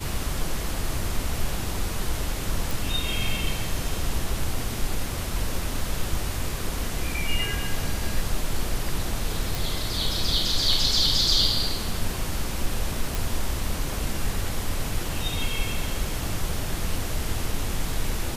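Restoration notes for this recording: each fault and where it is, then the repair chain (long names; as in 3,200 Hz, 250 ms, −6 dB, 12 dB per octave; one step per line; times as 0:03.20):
0:02.71: click
0:09.55: click
0:13.15: click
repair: click removal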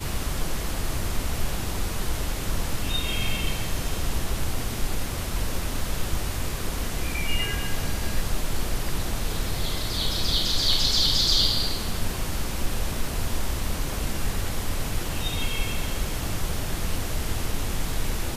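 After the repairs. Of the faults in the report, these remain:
none of them is left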